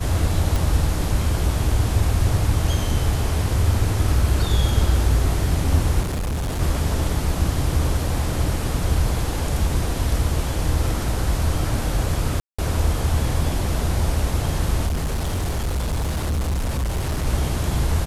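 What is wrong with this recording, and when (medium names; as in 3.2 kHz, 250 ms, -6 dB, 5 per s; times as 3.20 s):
0.56 s: pop
6.01–6.61 s: clipped -21.5 dBFS
12.40–12.59 s: dropout 185 ms
14.86–17.27 s: clipped -19.5 dBFS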